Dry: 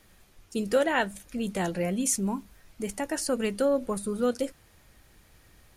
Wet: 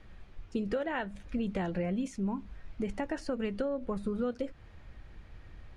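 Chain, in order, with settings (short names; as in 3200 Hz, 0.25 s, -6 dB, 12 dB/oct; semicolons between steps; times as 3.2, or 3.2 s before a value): compressor 5:1, threshold -33 dBFS, peak gain reduction 13 dB; LPF 2900 Hz 12 dB/oct; low shelf 110 Hz +10.5 dB; gain +1.5 dB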